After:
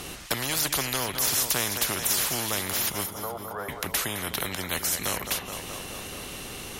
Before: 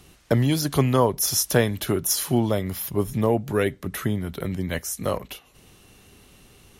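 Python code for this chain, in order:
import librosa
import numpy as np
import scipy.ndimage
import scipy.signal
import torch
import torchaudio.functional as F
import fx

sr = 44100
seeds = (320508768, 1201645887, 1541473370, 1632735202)

p1 = fx.cheby1_bandpass(x, sr, low_hz=420.0, high_hz=1400.0, order=5, at=(3.05, 3.68), fade=0.02)
p2 = p1 + fx.echo_feedback(p1, sr, ms=212, feedback_pct=60, wet_db=-20.0, dry=0)
p3 = fx.spectral_comp(p2, sr, ratio=4.0)
y = p3 * librosa.db_to_amplitude(-2.5)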